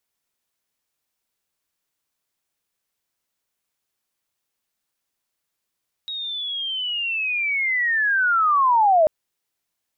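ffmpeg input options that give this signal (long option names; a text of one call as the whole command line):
ffmpeg -f lavfi -i "aevalsrc='pow(10,(-27+15*t/2.99)/20)*sin(2*PI*(3800*t-3200*t*t/(2*2.99)))':duration=2.99:sample_rate=44100" out.wav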